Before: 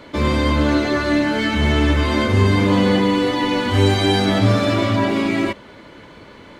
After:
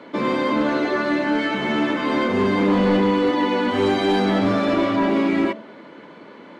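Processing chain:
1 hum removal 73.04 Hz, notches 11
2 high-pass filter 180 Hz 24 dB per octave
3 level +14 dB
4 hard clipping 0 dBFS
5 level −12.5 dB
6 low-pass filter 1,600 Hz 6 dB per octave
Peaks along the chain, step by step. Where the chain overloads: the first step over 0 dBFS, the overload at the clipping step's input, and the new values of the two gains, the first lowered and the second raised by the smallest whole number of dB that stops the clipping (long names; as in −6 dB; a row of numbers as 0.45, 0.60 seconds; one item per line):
−3.5, −5.5, +8.5, 0.0, −12.5, −12.5 dBFS
step 3, 8.5 dB
step 3 +5 dB, step 5 −3.5 dB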